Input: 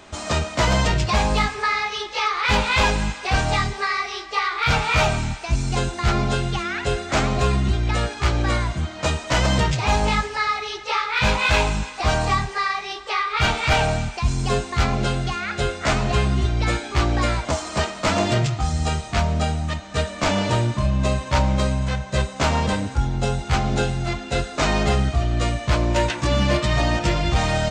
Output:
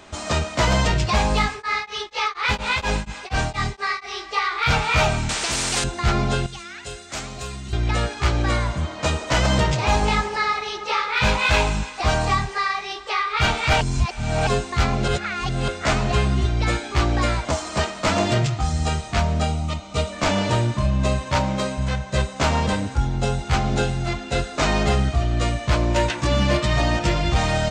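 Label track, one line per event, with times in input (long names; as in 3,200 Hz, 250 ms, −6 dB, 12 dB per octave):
1.510000	4.150000	tremolo along a rectified sine nulls at 4.2 Hz
5.290000	5.840000	every bin compressed towards the loudest bin 4 to 1
6.460000	7.730000	first-order pre-emphasis coefficient 0.8
8.490000	11.280000	delay with a band-pass on its return 82 ms, feedback 79%, band-pass 620 Hz, level −10 dB
13.810000	14.470000	reverse
15.080000	15.680000	reverse
19.460000	20.120000	Butterworth band-reject 1,700 Hz, Q 3.7
21.330000	21.770000	high-pass filter 80 Hz → 270 Hz
24.920000	25.430000	floating-point word with a short mantissa of 8 bits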